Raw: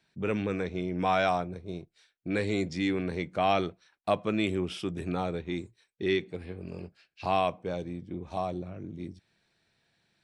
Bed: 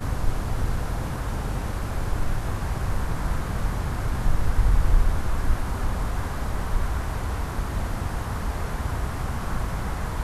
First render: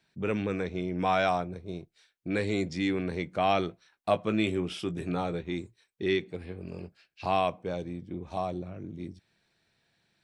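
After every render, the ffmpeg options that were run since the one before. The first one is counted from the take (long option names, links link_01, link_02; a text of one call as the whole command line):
ffmpeg -i in.wav -filter_complex "[0:a]asettb=1/sr,asplit=3[link_01][link_02][link_03];[link_01]atrim=end=3.674[link_04];[link_02]atrim=start=3.67:end=5.43,asetpts=PTS-STARTPTS,afade=type=in:duration=0.004:curve=qsin,afade=type=out:start_time=1.756:duration=0.004:curve=qsin,asplit=2[link_05][link_06];[link_06]adelay=18,volume=-10dB[link_07];[link_05][link_07]amix=inputs=2:normalize=0,atrim=end_sample=77616[link_08];[link_03]atrim=start=5.426[link_09];[link_04][link_08]acrossfade=duration=0.004:curve1=hsin:curve2=qsin[link_10];[link_10][link_09]acrossfade=duration=0.004:curve1=qsin:curve2=hsin" out.wav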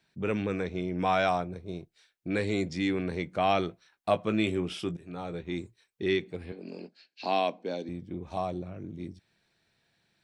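ffmpeg -i in.wav -filter_complex "[0:a]asettb=1/sr,asplit=3[link_01][link_02][link_03];[link_01]atrim=end=6.524[link_04];[link_02]atrim=start=6.52:end=7.89,asetpts=PTS-STARTPTS,afade=type=in:duration=0.004:curve=qsin,afade=type=out:start_time=1.366:duration=0.004:curve=qsin,highpass=frequency=210:width=0.5412,highpass=frequency=210:width=1.3066,equalizer=frequency=250:width_type=q:width=4:gain=6,equalizer=frequency=1200:width_type=q:width=4:gain=-8,equalizer=frequency=4300:width_type=q:width=4:gain=10,lowpass=frequency=7500:width=0.5412,lowpass=frequency=7500:width=1.3066[link_05];[link_03]atrim=start=7.886[link_06];[link_04][link_05]acrossfade=duration=0.004:curve1=hsin:curve2=qsin[link_07];[link_07][link_06]acrossfade=duration=0.004:curve1=qsin:curve2=hsin,asplit=2[link_08][link_09];[link_08]atrim=end=4.97,asetpts=PTS-STARTPTS,afade=type=out:start_time=4.966:duration=0.004:curve=hsin:silence=0.1[link_10];[link_09]atrim=start=4.97,asetpts=PTS-STARTPTS,afade=type=in:duration=0.61:silence=0.1[link_11];[link_10][link_11]concat=n=2:v=0:a=1" out.wav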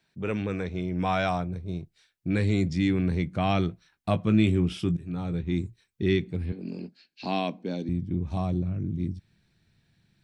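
ffmpeg -i in.wav -af "asubboost=boost=6:cutoff=220" out.wav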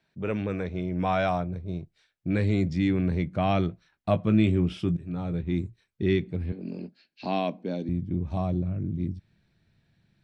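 ffmpeg -i in.wav -af "lowpass=frequency=3200:poles=1,equalizer=frequency=600:width=4.6:gain=4.5" out.wav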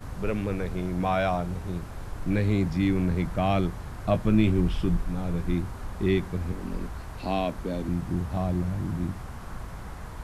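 ffmpeg -i in.wav -i bed.wav -filter_complex "[1:a]volume=-10.5dB[link_01];[0:a][link_01]amix=inputs=2:normalize=0" out.wav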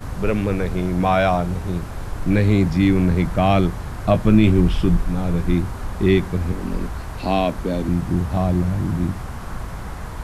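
ffmpeg -i in.wav -af "volume=8dB,alimiter=limit=-3dB:level=0:latency=1" out.wav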